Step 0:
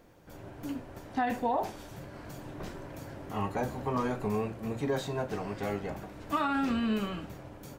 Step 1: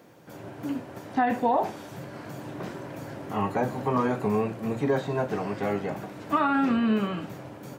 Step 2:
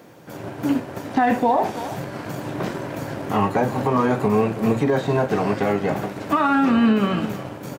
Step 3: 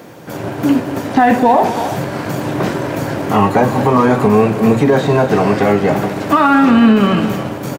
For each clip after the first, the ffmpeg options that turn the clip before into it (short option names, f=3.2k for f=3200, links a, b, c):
-filter_complex "[0:a]highpass=f=110:w=0.5412,highpass=f=110:w=1.3066,acrossover=split=2600[a][b];[b]acompressor=threshold=-56dB:ratio=4:attack=1:release=60[c];[a][c]amix=inputs=2:normalize=0,volume=6dB"
-filter_complex "[0:a]aecho=1:1:322:0.141,asplit=2[a][b];[b]aeval=exprs='sgn(val(0))*max(abs(val(0))-0.0106,0)':c=same,volume=-4dB[c];[a][c]amix=inputs=2:normalize=0,alimiter=limit=-16.5dB:level=0:latency=1:release=197,volume=7dB"
-filter_complex "[0:a]aecho=1:1:220:0.178,asplit=2[a][b];[b]asoftclip=type=hard:threshold=-25dB,volume=-6dB[c];[a][c]amix=inputs=2:normalize=0,volume=6.5dB"